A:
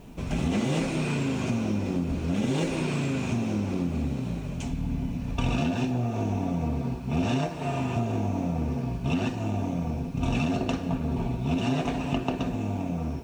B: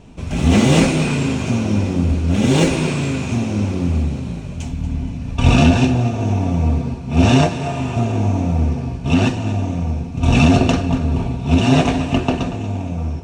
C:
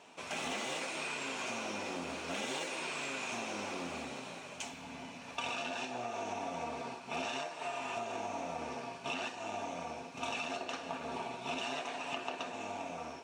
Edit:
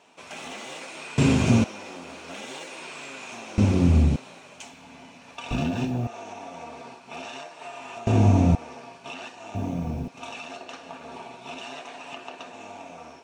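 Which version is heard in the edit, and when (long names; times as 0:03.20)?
C
0:01.18–0:01.64: punch in from B
0:03.58–0:04.16: punch in from B
0:05.51–0:06.07: punch in from A
0:08.07–0:08.55: punch in from B
0:09.55–0:10.08: punch in from A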